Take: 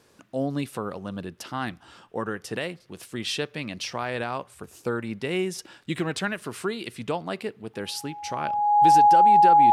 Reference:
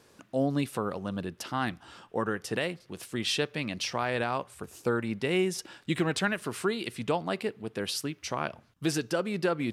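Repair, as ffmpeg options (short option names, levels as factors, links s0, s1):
-af "bandreject=f=830:w=30"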